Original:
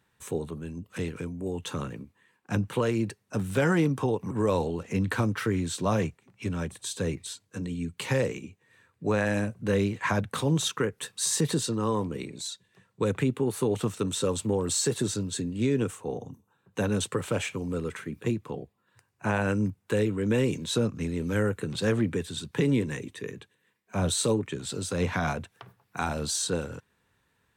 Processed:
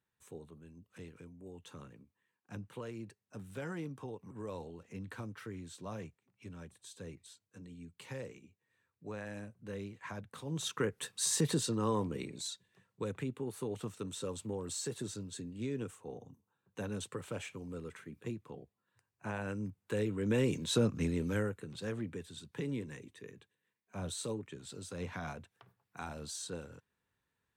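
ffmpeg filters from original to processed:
-af "volume=1.88,afade=t=in:st=10.45:d=0.43:silence=0.237137,afade=t=out:st=12.5:d=0.6:silence=0.421697,afade=t=in:st=19.64:d=1.42:silence=0.298538,afade=t=out:st=21.06:d=0.52:silence=0.266073"

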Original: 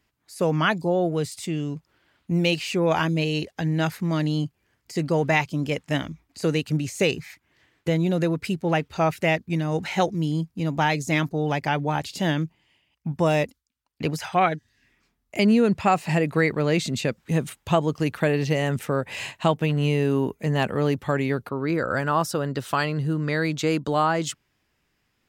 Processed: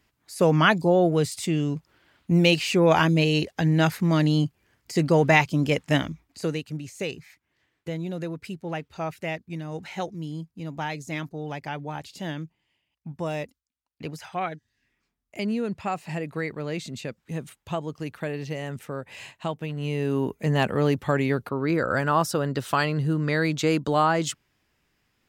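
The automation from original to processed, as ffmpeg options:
-af "volume=4.22,afade=t=out:st=5.94:d=0.72:silence=0.251189,afade=t=in:st=19.76:d=0.73:silence=0.334965"

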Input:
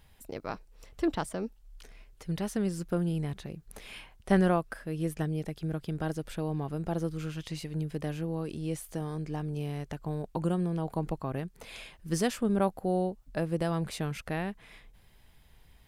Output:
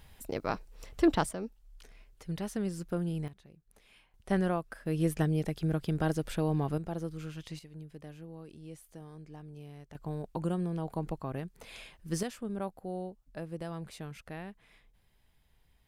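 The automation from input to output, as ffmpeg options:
-af "asetnsamples=n=441:p=0,asendcmd='1.31 volume volume -3.5dB;3.28 volume volume -16dB;4.14 volume volume -5dB;4.86 volume volume 3dB;6.78 volume volume -5dB;7.59 volume volume -13dB;9.95 volume volume -3dB;12.23 volume volume -9.5dB',volume=1.58"

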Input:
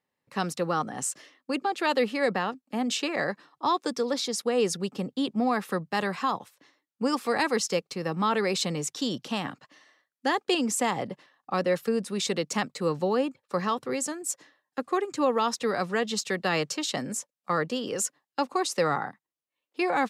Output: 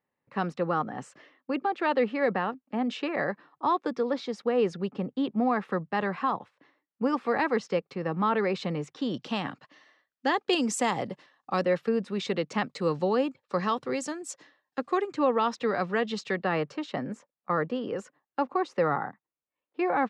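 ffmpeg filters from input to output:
-af "asetnsamples=n=441:p=0,asendcmd='9.14 lowpass f 4300;10.53 lowpass f 7400;11.65 lowpass f 3000;12.68 lowpass f 5100;15.07 lowpass f 3100;16.44 lowpass f 1800',lowpass=2200"

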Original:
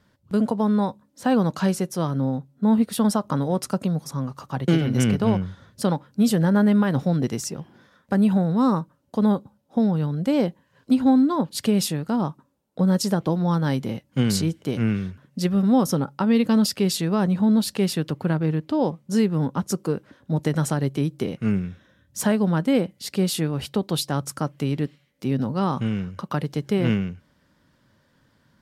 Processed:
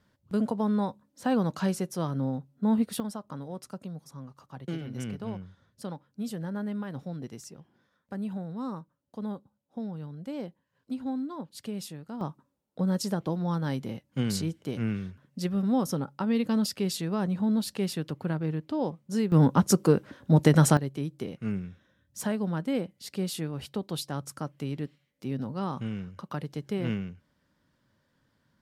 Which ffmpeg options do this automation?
-af "asetnsamples=n=441:p=0,asendcmd='3 volume volume -15.5dB;12.21 volume volume -7.5dB;19.32 volume volume 3.5dB;20.77 volume volume -9dB',volume=0.501"

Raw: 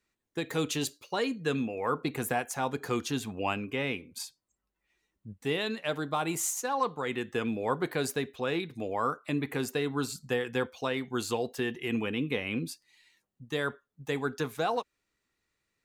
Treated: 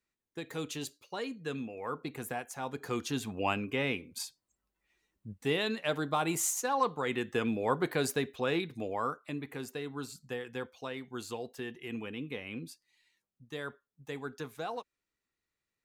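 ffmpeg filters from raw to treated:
-af "afade=t=in:st=2.59:d=0.89:silence=0.421697,afade=t=out:st=8.58:d=0.82:silence=0.375837"

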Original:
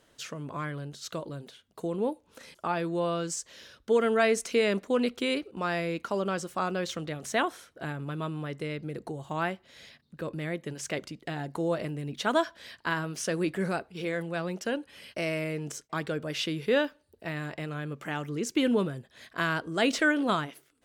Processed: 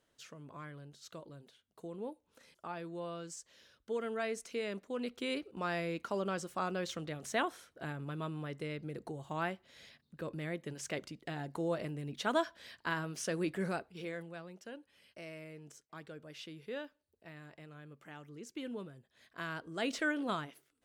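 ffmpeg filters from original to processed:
-af "volume=1.26,afade=t=in:st=4.94:d=0.58:silence=0.446684,afade=t=out:st=13.71:d=0.76:silence=0.281838,afade=t=in:st=18.96:d=1.11:silence=0.398107"

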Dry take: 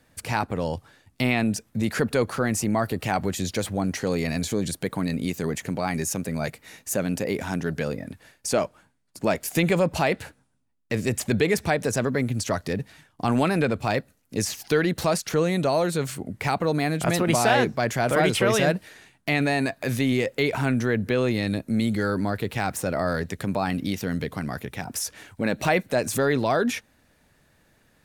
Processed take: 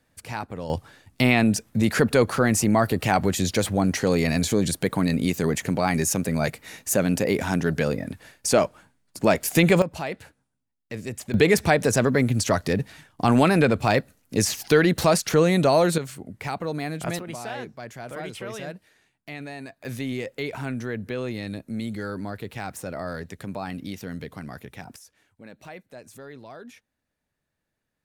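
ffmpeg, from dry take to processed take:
-af "asetnsamples=n=441:p=0,asendcmd='0.7 volume volume 4dB;9.82 volume volume -8dB;11.34 volume volume 4dB;15.98 volume volume -5.5dB;17.19 volume volume -14dB;19.85 volume volume -7dB;24.96 volume volume -20dB',volume=0.473"

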